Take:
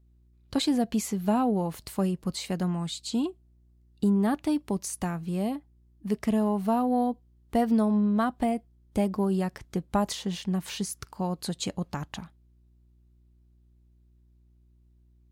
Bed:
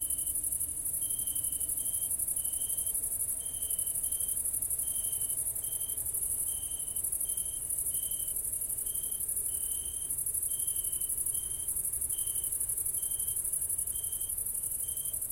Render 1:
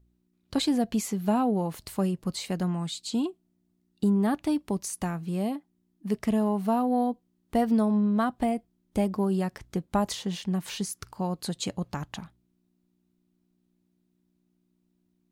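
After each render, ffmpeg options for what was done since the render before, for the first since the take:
ffmpeg -i in.wav -af "bandreject=frequency=60:width_type=h:width=4,bandreject=frequency=120:width_type=h:width=4" out.wav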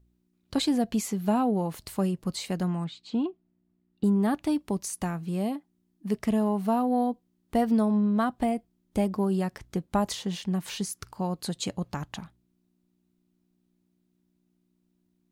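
ffmpeg -i in.wav -filter_complex "[0:a]asettb=1/sr,asplit=3[link_01][link_02][link_03];[link_01]atrim=end=2.844[link_04];[link_02]atrim=start=2.84:end=4.04,asetpts=PTS-STARTPTS,afade=type=in:duration=0.004:curve=qsin,afade=type=out:start_time=1.196:duration=0.004:curve=qsin,lowpass=2500[link_05];[link_03]atrim=start=4.036[link_06];[link_04][link_05]acrossfade=duration=0.004:curve1=hsin:curve2=qsin[link_07];[link_07][link_06]acrossfade=duration=0.004:curve1=qsin:curve2=hsin" out.wav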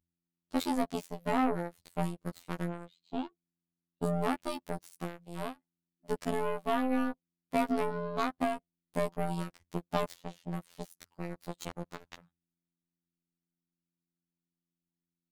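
ffmpeg -i in.wav -af "aeval=exprs='0.237*(cos(1*acos(clip(val(0)/0.237,-1,1)))-cos(1*PI/2))+0.00168*(cos(3*acos(clip(val(0)/0.237,-1,1)))-cos(3*PI/2))+0.0376*(cos(7*acos(clip(val(0)/0.237,-1,1)))-cos(7*PI/2))':channel_layout=same,afftfilt=real='hypot(re,im)*cos(PI*b)':imag='0':win_size=2048:overlap=0.75" out.wav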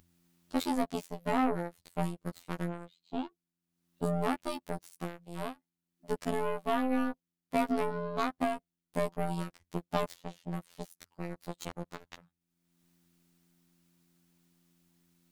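ffmpeg -i in.wav -af "acompressor=mode=upward:threshold=-51dB:ratio=2.5" out.wav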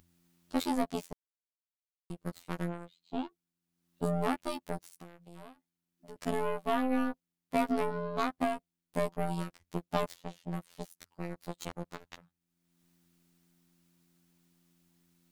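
ffmpeg -i in.wav -filter_complex "[0:a]asettb=1/sr,asplit=3[link_01][link_02][link_03];[link_01]atrim=end=4.914[link_04];[link_02]atrim=start=4.91:end=6.16,asetpts=PTS-STARTPTS,afade=type=in:duration=0.004:curve=qsin,afade=type=out:start_time=1.246:duration=0.004:curve=qsin,acompressor=threshold=-48dB:ratio=3:attack=3.2:release=140:knee=1:detection=peak[link_05];[link_03]atrim=start=6.156[link_06];[link_04][link_05]acrossfade=duration=0.004:curve1=hsin:curve2=qsin[link_07];[link_07][link_06]acrossfade=duration=0.004:curve1=qsin:curve2=hsin,asplit=3[link_08][link_09][link_10];[link_08]atrim=end=1.13,asetpts=PTS-STARTPTS,afade=type=out:start_time=1.126:duration=0.004:curve=hsin[link_11];[link_09]atrim=start=1.13:end=2.1,asetpts=PTS-STARTPTS,volume=0[link_12];[link_10]atrim=start=2.1,asetpts=PTS-STARTPTS,afade=type=in:duration=0.004:curve=hsin[link_13];[link_11][link_12][link_13]concat=n=3:v=0:a=1" out.wav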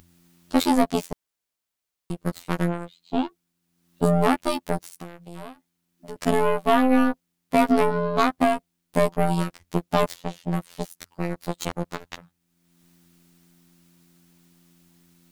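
ffmpeg -i in.wav -af "volume=11.5dB,alimiter=limit=-2dB:level=0:latency=1" out.wav

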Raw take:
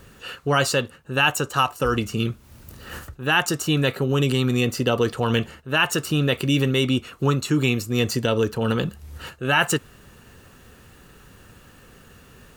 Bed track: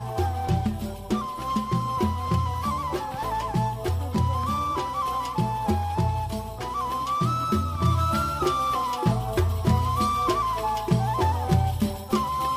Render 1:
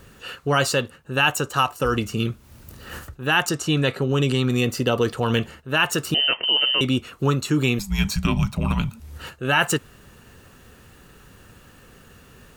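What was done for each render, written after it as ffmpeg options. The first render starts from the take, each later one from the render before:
ffmpeg -i in.wav -filter_complex "[0:a]asettb=1/sr,asplit=3[link_01][link_02][link_03];[link_01]atrim=end=3.494[link_04];[link_02]atrim=start=3.49:end=4.5,asetpts=PTS-STARTPTS,afade=type=in:duration=0.004:curve=qsin,afade=type=out:start_time=1.006:duration=0.004:curve=qsin,lowpass=9200[link_05];[link_03]atrim=start=4.496[link_06];[link_04][link_05]acrossfade=duration=0.004:curve1=hsin:curve2=qsin[link_07];[link_07][link_06]acrossfade=duration=0.004:curve1=qsin:curve2=hsin,asettb=1/sr,asplit=3[link_08][link_09][link_10];[link_08]atrim=end=6.144[link_11];[link_09]atrim=start=6.14:end=6.81,asetpts=PTS-STARTPTS,afade=type=in:duration=0.004:curve=qsin,afade=type=out:start_time=0.666:duration=0.004:curve=qsin,lowpass=frequency=2700:width_type=q:width=0.5098,lowpass=frequency=2700:width_type=q:width=0.6013,lowpass=frequency=2700:width_type=q:width=0.9,lowpass=frequency=2700:width_type=q:width=2.563,afreqshift=-3200[link_12];[link_10]atrim=start=6.806[link_13];[link_11][link_12]acrossfade=duration=0.004:curve1=hsin:curve2=qsin[link_14];[link_14][link_13]acrossfade=duration=0.004:curve1=qsin:curve2=hsin,asettb=1/sr,asplit=3[link_15][link_16][link_17];[link_15]atrim=end=7.794[link_18];[link_16]atrim=start=7.79:end=9,asetpts=PTS-STARTPTS,afade=type=in:duration=0.004:curve=qsin,afade=type=out:start_time=1.206:duration=0.004:curve=qsin,afreqshift=-300[link_19];[link_17]atrim=start=8.996[link_20];[link_18][link_19]acrossfade=duration=0.004:curve1=hsin:curve2=qsin[link_21];[link_21][link_20]acrossfade=duration=0.004:curve1=qsin:curve2=hsin" out.wav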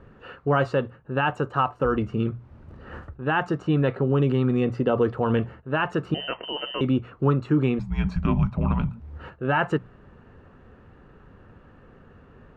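ffmpeg -i in.wav -af "lowpass=1300,bandreject=frequency=60:width_type=h:width=6,bandreject=frequency=120:width_type=h:width=6,bandreject=frequency=180:width_type=h:width=6" out.wav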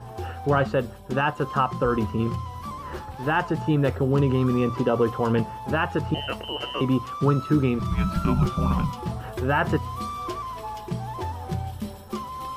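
ffmpeg -i in.wav -i bed.wav -filter_complex "[1:a]volume=-8dB[link_01];[0:a][link_01]amix=inputs=2:normalize=0" out.wav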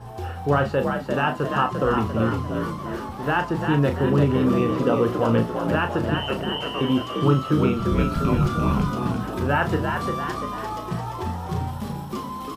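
ffmpeg -i in.wav -filter_complex "[0:a]asplit=2[link_01][link_02];[link_02]adelay=35,volume=-8dB[link_03];[link_01][link_03]amix=inputs=2:normalize=0,asplit=7[link_04][link_05][link_06][link_07][link_08][link_09][link_10];[link_05]adelay=346,afreqshift=56,volume=-5.5dB[link_11];[link_06]adelay=692,afreqshift=112,volume=-11.3dB[link_12];[link_07]adelay=1038,afreqshift=168,volume=-17.2dB[link_13];[link_08]adelay=1384,afreqshift=224,volume=-23dB[link_14];[link_09]adelay=1730,afreqshift=280,volume=-28.9dB[link_15];[link_10]adelay=2076,afreqshift=336,volume=-34.7dB[link_16];[link_04][link_11][link_12][link_13][link_14][link_15][link_16]amix=inputs=7:normalize=0" out.wav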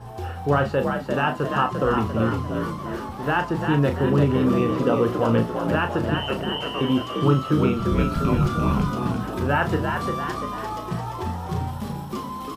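ffmpeg -i in.wav -af anull out.wav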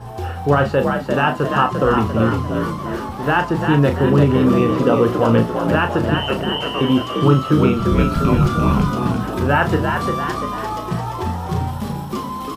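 ffmpeg -i in.wav -af "volume=5.5dB,alimiter=limit=-2dB:level=0:latency=1" out.wav

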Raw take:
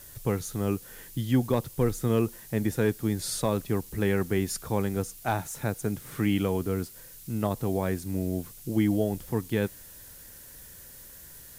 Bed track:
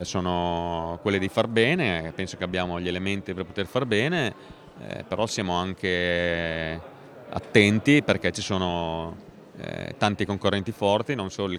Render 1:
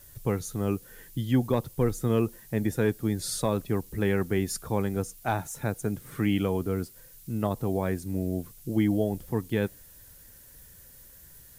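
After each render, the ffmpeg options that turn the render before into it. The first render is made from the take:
ffmpeg -i in.wav -af "afftdn=noise_reduction=6:noise_floor=-48" out.wav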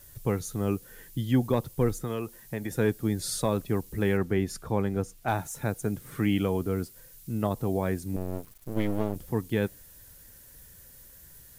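ffmpeg -i in.wav -filter_complex "[0:a]asettb=1/sr,asplit=3[link_01][link_02][link_03];[link_01]atrim=end=1.984[link_04];[link_02]atrim=start=1.98:end=2.71,asetpts=PTS-STARTPTS,afade=type=in:duration=0.004:curve=qsin,afade=type=out:start_time=0.726:duration=0.004:curve=qsin,acrossover=split=520|2200[link_05][link_06][link_07];[link_05]acompressor=threshold=-33dB:ratio=4[link_08];[link_06]acompressor=threshold=-35dB:ratio=4[link_09];[link_07]acompressor=threshold=-46dB:ratio=4[link_10];[link_08][link_09][link_10]amix=inputs=3:normalize=0[link_11];[link_03]atrim=start=2.706[link_12];[link_04][link_11]acrossfade=duration=0.004:curve1=hsin:curve2=qsin[link_13];[link_13][link_12]acrossfade=duration=0.004:curve1=qsin:curve2=hsin,asettb=1/sr,asplit=3[link_14][link_15][link_16];[link_14]atrim=end=4.174[link_17];[link_15]atrim=start=4.17:end=5.28,asetpts=PTS-STARTPTS,afade=type=in:duration=0.004:curve=qsin,afade=type=out:start_time=1.106:duration=0.004:curve=qsin,aemphasis=mode=reproduction:type=cd[link_18];[link_16]atrim=start=5.276[link_19];[link_17][link_18]acrossfade=duration=0.004:curve1=hsin:curve2=qsin[link_20];[link_20][link_19]acrossfade=duration=0.004:curve1=qsin:curve2=hsin,asettb=1/sr,asplit=3[link_21][link_22][link_23];[link_21]atrim=end=8.164[link_24];[link_22]atrim=start=8.16:end=9.16,asetpts=PTS-STARTPTS,afade=type=in:duration=0.004:curve=qsin,afade=type=out:start_time=0.996:duration=0.004:curve=qsin,aeval=exprs='max(val(0),0)':channel_layout=same[link_25];[link_23]atrim=start=9.156[link_26];[link_24][link_25]acrossfade=duration=0.004:curve1=hsin:curve2=qsin[link_27];[link_27][link_26]acrossfade=duration=0.004:curve1=qsin:curve2=hsin" out.wav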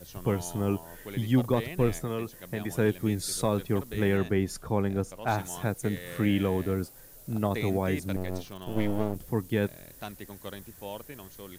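ffmpeg -i in.wav -i bed.wav -filter_complex "[1:a]volume=-17.5dB[link_01];[0:a][link_01]amix=inputs=2:normalize=0" out.wav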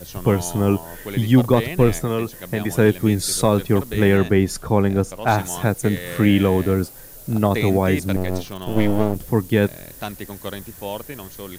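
ffmpeg -i in.wav -af "volume=10dB,alimiter=limit=-3dB:level=0:latency=1" out.wav

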